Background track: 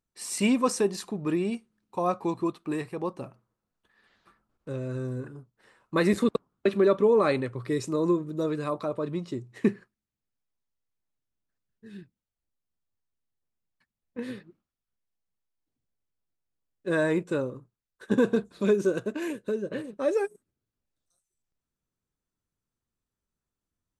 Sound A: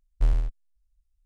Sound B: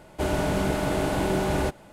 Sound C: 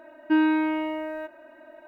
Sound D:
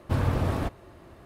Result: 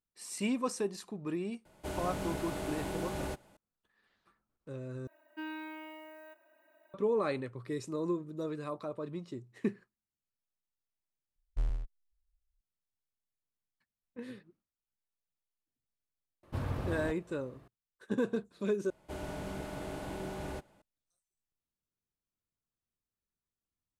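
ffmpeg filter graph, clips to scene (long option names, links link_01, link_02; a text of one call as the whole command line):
ffmpeg -i bed.wav -i cue0.wav -i cue1.wav -i cue2.wav -i cue3.wav -filter_complex "[2:a]asplit=2[link_01][link_02];[0:a]volume=-9dB[link_03];[link_01]highshelf=frequency=4500:gain=5[link_04];[3:a]aemphasis=mode=production:type=riaa[link_05];[link_03]asplit=4[link_06][link_07][link_08][link_09];[link_06]atrim=end=5.074[link_10];[link_05]atrim=end=1.87,asetpts=PTS-STARTPTS,volume=-17dB[link_11];[link_07]atrim=start=6.936:end=11.364[link_12];[1:a]atrim=end=1.25,asetpts=PTS-STARTPTS,volume=-10.5dB[link_13];[link_08]atrim=start=12.606:end=18.904[link_14];[link_02]atrim=end=1.92,asetpts=PTS-STARTPTS,volume=-15.5dB[link_15];[link_09]atrim=start=20.816[link_16];[link_04]atrim=end=1.92,asetpts=PTS-STARTPTS,volume=-13dB,afade=type=in:duration=0.004:curve=hsin,afade=type=out:start_time=1.916:duration=0.004:curve=hsin,adelay=1650[link_17];[4:a]atrim=end=1.25,asetpts=PTS-STARTPTS,volume=-10.5dB,afade=type=in:duration=0.004:curve=hsin,afade=type=out:start_time=1.246:duration=0.004:curve=hsin,adelay=16430[link_18];[link_10][link_11]acrossfade=duration=0.004:curve1=hsin:curve2=hsin[link_19];[link_19][link_12]acrossfade=duration=0.004:curve1=hsin:curve2=hsin[link_20];[link_20][link_13]acrossfade=duration=0.004:curve1=hsin:curve2=hsin[link_21];[link_21][link_14]acrossfade=duration=0.004:curve1=hsin:curve2=hsin[link_22];[link_22][link_15]acrossfade=duration=0.004:curve1=hsin:curve2=hsin[link_23];[link_23][link_16]acrossfade=duration=0.004:curve1=hsin:curve2=hsin[link_24];[link_24][link_17][link_18]amix=inputs=3:normalize=0" out.wav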